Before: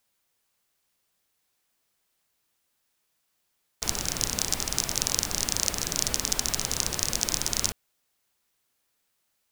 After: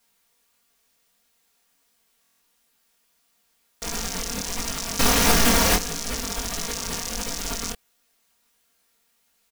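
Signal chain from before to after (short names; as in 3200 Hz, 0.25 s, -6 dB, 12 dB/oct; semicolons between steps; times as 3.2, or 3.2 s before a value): comb 4.3 ms, depth 94%; limiter -17 dBFS, peak gain reduction 15.5 dB; 4.99–5.76 sample leveller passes 5; chorus 1.5 Hz, delay 18 ms, depth 6.9 ms; stuck buffer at 2.22, samples 1024, times 7; gain +8 dB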